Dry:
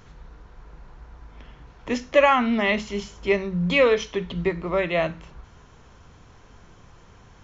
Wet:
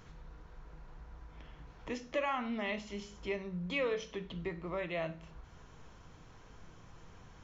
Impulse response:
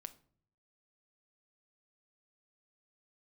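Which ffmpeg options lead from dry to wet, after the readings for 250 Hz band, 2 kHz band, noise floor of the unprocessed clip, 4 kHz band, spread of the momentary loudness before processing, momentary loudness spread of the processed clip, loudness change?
-14.5 dB, -15.0 dB, -51 dBFS, -14.0 dB, 11 LU, 23 LU, -15.5 dB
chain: -filter_complex "[0:a]acompressor=threshold=0.00562:ratio=1.5[s0];[1:a]atrim=start_sample=2205[s1];[s0][s1]afir=irnorm=-1:irlink=0"

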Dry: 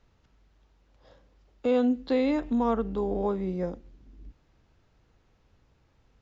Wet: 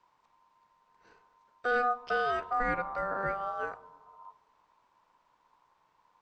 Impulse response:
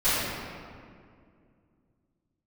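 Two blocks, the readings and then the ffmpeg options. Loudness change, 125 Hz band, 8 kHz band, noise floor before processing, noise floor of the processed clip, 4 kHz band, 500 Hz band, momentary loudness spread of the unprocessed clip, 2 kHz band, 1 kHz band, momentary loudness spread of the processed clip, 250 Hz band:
-4.0 dB, -10.5 dB, no reading, -67 dBFS, -72 dBFS, -2.0 dB, -7.0 dB, 8 LU, +12.0 dB, +5.0 dB, 8 LU, -19.5 dB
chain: -filter_complex "[0:a]aeval=exprs='val(0)*sin(2*PI*980*n/s)':c=same,asplit=2[s0][s1];[1:a]atrim=start_sample=2205,asetrate=74970,aresample=44100,lowshelf=f=400:g=10.5[s2];[s1][s2]afir=irnorm=-1:irlink=0,volume=0.0178[s3];[s0][s3]amix=inputs=2:normalize=0,volume=0.794"

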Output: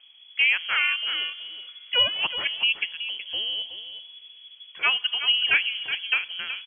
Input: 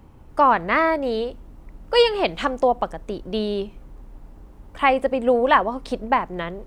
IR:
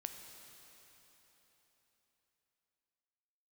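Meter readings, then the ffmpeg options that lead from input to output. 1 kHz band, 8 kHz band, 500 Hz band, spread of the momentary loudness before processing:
-17.5 dB, no reading, -23.5 dB, 12 LU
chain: -filter_complex "[0:a]asplit=2[s0][s1];[1:a]atrim=start_sample=2205[s2];[s1][s2]afir=irnorm=-1:irlink=0,volume=0.237[s3];[s0][s3]amix=inputs=2:normalize=0,lowpass=f=2900:t=q:w=0.5098,lowpass=f=2900:t=q:w=0.6013,lowpass=f=2900:t=q:w=0.9,lowpass=f=2900:t=q:w=2.563,afreqshift=-3400,aecho=1:1:371:0.299,volume=0.473"

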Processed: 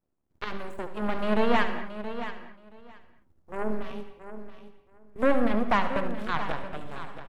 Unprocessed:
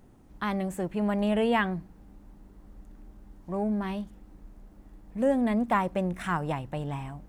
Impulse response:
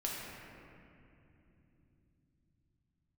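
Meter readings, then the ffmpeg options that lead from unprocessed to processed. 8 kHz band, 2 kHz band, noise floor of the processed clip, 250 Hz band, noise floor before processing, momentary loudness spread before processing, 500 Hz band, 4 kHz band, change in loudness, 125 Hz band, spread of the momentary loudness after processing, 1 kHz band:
no reading, +2.5 dB, -68 dBFS, -2.5 dB, -55 dBFS, 11 LU, +0.5 dB, +2.5 dB, -0.5 dB, -6.5 dB, 19 LU, +1.5 dB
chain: -filter_complex "[0:a]aeval=exprs='0.211*(cos(1*acos(clip(val(0)/0.211,-1,1)))-cos(1*PI/2))+0.0422*(cos(6*acos(clip(val(0)/0.211,-1,1)))-cos(6*PI/2))+0.0299*(cos(7*acos(clip(val(0)/0.211,-1,1)))-cos(7*PI/2))':c=same,acrossover=split=3500[s0][s1];[s1]acompressor=threshold=0.00158:ratio=4:attack=1:release=60[s2];[s0][s2]amix=inputs=2:normalize=0,aecho=1:1:675|1350:0.266|0.0426,asplit=2[s3][s4];[1:a]atrim=start_sample=2205,afade=t=out:st=0.24:d=0.01,atrim=end_sample=11025,adelay=71[s5];[s4][s5]afir=irnorm=-1:irlink=0,volume=0.335[s6];[s3][s6]amix=inputs=2:normalize=0"

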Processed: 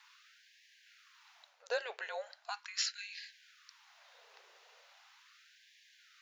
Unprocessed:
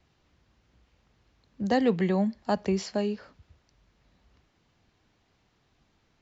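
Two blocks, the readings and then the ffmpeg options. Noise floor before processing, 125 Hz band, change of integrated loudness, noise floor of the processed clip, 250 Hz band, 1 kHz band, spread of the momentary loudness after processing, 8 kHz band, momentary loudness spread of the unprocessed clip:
-70 dBFS, under -40 dB, -12.0 dB, -67 dBFS, under -40 dB, -13.0 dB, 24 LU, no reading, 9 LU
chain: -af "afreqshift=-230,areverse,acompressor=threshold=0.0126:ratio=5,areverse,asubboost=boost=3.5:cutoff=230,afftfilt=real='re*gte(b*sr/1024,370*pow(1600/370,0.5+0.5*sin(2*PI*0.39*pts/sr)))':imag='im*gte(b*sr/1024,370*pow(1600/370,0.5+0.5*sin(2*PI*0.39*pts/sr)))':win_size=1024:overlap=0.75,volume=3.98"

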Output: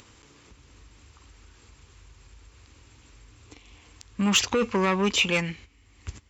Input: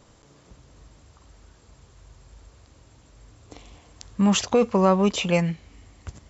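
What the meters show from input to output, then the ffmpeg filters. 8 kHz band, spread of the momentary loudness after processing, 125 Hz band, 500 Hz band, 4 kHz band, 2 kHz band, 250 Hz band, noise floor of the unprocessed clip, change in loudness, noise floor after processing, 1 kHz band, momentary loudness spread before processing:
no reading, 16 LU, -6.0 dB, -5.5 dB, +4.5 dB, +6.0 dB, -5.0 dB, -55 dBFS, -2.5 dB, -57 dBFS, -3.5 dB, 13 LU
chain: -af "asoftclip=type=tanh:threshold=0.158,agate=range=0.251:threshold=0.00891:ratio=16:detection=peak,highpass=42,acompressor=mode=upward:threshold=0.00708:ratio=2.5,equalizer=f=160:t=o:w=0.67:g=-10,equalizer=f=630:t=o:w=0.67:g=-11,equalizer=f=2500:t=o:w=0.67:g=6,volume=1.41"

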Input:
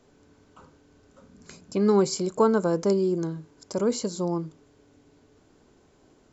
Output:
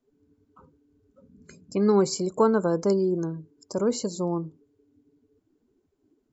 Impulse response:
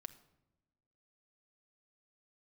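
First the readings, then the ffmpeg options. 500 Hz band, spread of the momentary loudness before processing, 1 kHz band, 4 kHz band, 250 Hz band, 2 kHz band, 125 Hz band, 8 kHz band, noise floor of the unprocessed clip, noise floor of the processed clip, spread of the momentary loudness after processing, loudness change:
0.0 dB, 12 LU, 0.0 dB, -0.5 dB, 0.0 dB, -0.5 dB, 0.0 dB, no reading, -60 dBFS, -73 dBFS, 12 LU, 0.0 dB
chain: -af "afftdn=nr=21:nf=-46"

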